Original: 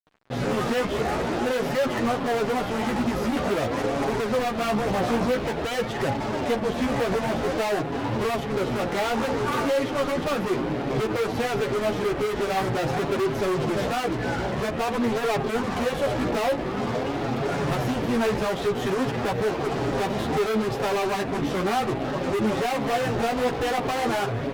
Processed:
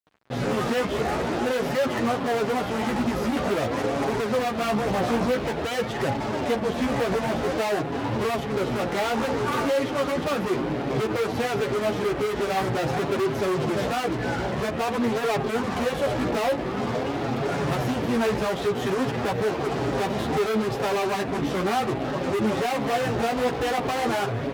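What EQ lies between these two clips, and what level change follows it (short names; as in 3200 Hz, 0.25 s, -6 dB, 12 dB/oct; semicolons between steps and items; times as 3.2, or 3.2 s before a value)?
HPF 43 Hz; 0.0 dB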